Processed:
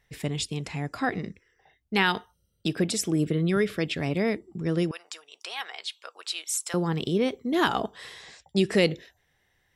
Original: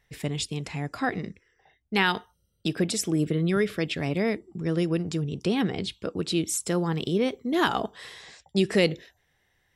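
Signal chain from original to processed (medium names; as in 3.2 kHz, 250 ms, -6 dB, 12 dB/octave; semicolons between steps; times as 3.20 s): 4.91–6.74 s: high-pass 810 Hz 24 dB/octave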